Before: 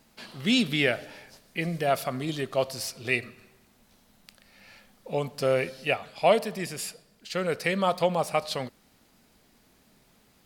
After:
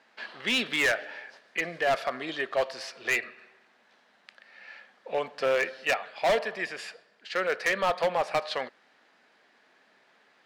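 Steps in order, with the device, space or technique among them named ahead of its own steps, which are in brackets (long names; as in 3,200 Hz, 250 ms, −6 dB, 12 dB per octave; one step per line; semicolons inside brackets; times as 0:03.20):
megaphone (band-pass filter 500–3,300 Hz; parametric band 1,700 Hz +8 dB 0.36 octaves; hard clipping −23 dBFS, distortion −9 dB)
level +3 dB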